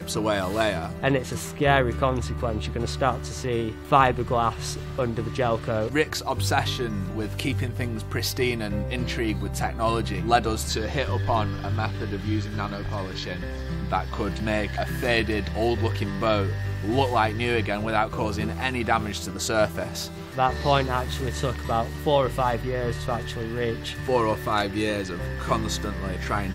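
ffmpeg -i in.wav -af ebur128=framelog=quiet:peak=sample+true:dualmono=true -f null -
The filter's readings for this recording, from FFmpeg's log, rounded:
Integrated loudness:
  I:         -22.8 LUFS
  Threshold: -32.8 LUFS
Loudness range:
  LRA:         3.1 LU
  Threshold: -42.8 LUFS
  LRA low:   -24.5 LUFS
  LRA high:  -21.4 LUFS
Sample peak:
  Peak:       -4.1 dBFS
True peak:
  Peak:       -4.0 dBFS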